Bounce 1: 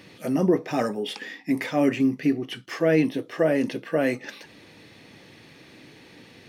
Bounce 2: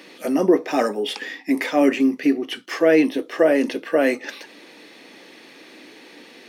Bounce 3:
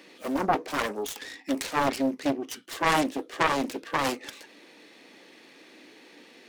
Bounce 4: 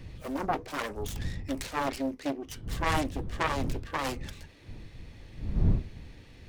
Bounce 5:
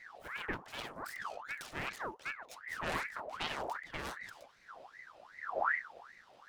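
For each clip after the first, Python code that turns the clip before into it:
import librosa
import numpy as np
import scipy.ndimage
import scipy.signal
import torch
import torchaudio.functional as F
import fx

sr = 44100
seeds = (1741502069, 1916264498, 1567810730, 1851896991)

y1 = scipy.signal.sosfilt(scipy.signal.butter(4, 250.0, 'highpass', fs=sr, output='sos'), x)
y1 = y1 * librosa.db_to_amplitude(5.5)
y2 = fx.self_delay(y1, sr, depth_ms=1.0)
y2 = y2 * librosa.db_to_amplitude(-7.0)
y3 = fx.dmg_wind(y2, sr, seeds[0], corner_hz=98.0, level_db=-29.0)
y3 = y3 * librosa.db_to_amplitude(-5.5)
y4 = fx.ring_lfo(y3, sr, carrier_hz=1300.0, swing_pct=55, hz=2.6)
y4 = y4 * librosa.db_to_amplitude(-7.0)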